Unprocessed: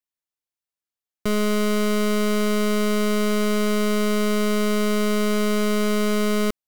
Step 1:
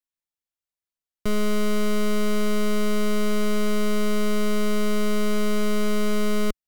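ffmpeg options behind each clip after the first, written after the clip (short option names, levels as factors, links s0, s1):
-af "lowshelf=f=66:g=9.5,volume=0.631"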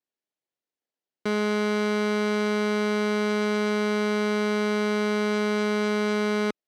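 -filter_complex "[0:a]asplit=2[s0][s1];[s1]acrusher=samples=35:mix=1:aa=0.000001,volume=0.631[s2];[s0][s2]amix=inputs=2:normalize=0,highpass=270,lowpass=5700"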